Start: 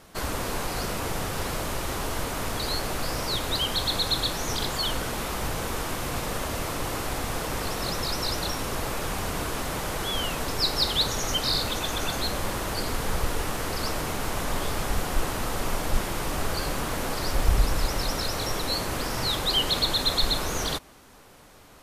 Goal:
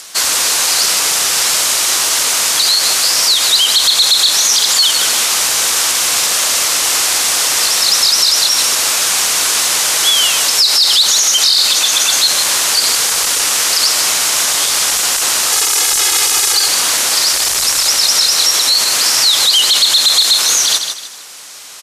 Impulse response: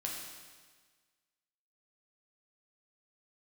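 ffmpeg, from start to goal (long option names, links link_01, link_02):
-filter_complex "[0:a]asettb=1/sr,asplit=3[link_01][link_02][link_03];[link_01]atrim=end=15.524[link_04];[link_02]atrim=start=15.52:end=16.68,asetpts=PTS-STARTPTS,afade=type=in:duration=0.004:curve=qsin,afade=type=out:start_time=1.156:duration=0.004:curve=qsin,aecho=1:1:2.4:0.96,atrim=end_sample=51156[link_05];[link_03]atrim=start=16.676[link_06];[link_04][link_05]acrossfade=duration=0.004:curve1=hsin:curve2=qsin[link_07];[link_07][link_06]acrossfade=duration=0.004:curve1=qsin:curve2=hsin,acrossover=split=5300[link_08][link_09];[link_08]asoftclip=type=tanh:threshold=-22dB[link_10];[link_09]acompressor=mode=upward:threshold=-58dB:ratio=2.5[link_11];[link_10][link_11]amix=inputs=2:normalize=0,bandpass=frequency=6400:width_type=q:width=1:csg=0,aecho=1:1:153|306|459:0.282|0.0902|0.0289,alimiter=level_in=28dB:limit=-1dB:release=50:level=0:latency=1,volume=-1dB"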